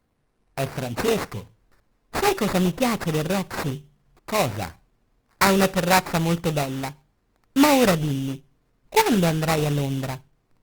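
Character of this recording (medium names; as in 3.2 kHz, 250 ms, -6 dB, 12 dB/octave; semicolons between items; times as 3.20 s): aliases and images of a low sample rate 3.2 kHz, jitter 20%; Opus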